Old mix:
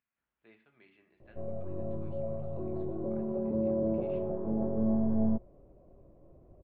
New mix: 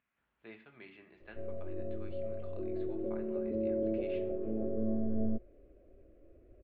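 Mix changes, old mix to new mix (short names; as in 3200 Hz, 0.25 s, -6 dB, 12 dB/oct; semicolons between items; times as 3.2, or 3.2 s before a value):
speech +9.0 dB; background: add fixed phaser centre 380 Hz, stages 4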